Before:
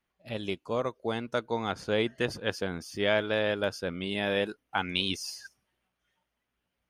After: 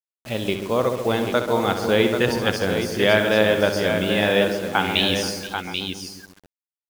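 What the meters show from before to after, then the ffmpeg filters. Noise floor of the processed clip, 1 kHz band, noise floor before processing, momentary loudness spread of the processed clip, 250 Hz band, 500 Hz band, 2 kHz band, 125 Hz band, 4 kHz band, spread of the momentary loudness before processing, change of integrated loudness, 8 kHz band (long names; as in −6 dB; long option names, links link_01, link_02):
below −85 dBFS, +10.5 dB, −83 dBFS, 10 LU, +11.0 dB, +10.5 dB, +10.0 dB, +11.0 dB, +10.0 dB, 8 LU, +10.0 dB, +11.5 dB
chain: -filter_complex "[0:a]asplit=2[link_01][link_02];[link_02]adelay=136,lowpass=frequency=1100:poles=1,volume=-7dB,asplit=2[link_03][link_04];[link_04]adelay=136,lowpass=frequency=1100:poles=1,volume=0.55,asplit=2[link_05][link_06];[link_06]adelay=136,lowpass=frequency=1100:poles=1,volume=0.55,asplit=2[link_07][link_08];[link_08]adelay=136,lowpass=frequency=1100:poles=1,volume=0.55,asplit=2[link_09][link_10];[link_10]adelay=136,lowpass=frequency=1100:poles=1,volume=0.55,asplit=2[link_11][link_12];[link_12]adelay=136,lowpass=frequency=1100:poles=1,volume=0.55,asplit=2[link_13][link_14];[link_14]adelay=136,lowpass=frequency=1100:poles=1,volume=0.55[link_15];[link_03][link_05][link_07][link_09][link_11][link_13][link_15]amix=inputs=7:normalize=0[link_16];[link_01][link_16]amix=inputs=2:normalize=0,acrusher=bits=7:mix=0:aa=0.000001,asplit=2[link_17][link_18];[link_18]aecho=0:1:65|476|787:0.335|0.126|0.447[link_19];[link_17][link_19]amix=inputs=2:normalize=0,volume=8.5dB"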